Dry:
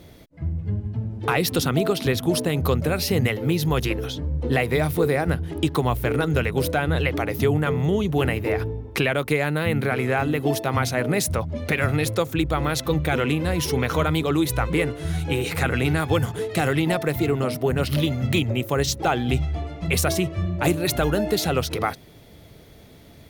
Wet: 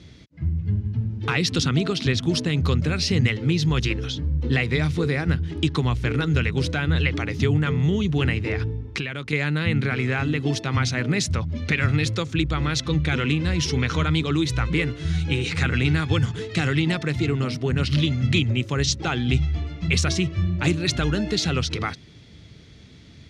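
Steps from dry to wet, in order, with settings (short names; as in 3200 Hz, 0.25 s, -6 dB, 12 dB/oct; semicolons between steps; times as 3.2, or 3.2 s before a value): LPF 6500 Hz 24 dB/oct; bell 660 Hz -14.5 dB 1.7 oct; 8.86–9.33 compressor 4:1, threshold -30 dBFS, peak gain reduction 8.5 dB; HPF 57 Hz; gain +4 dB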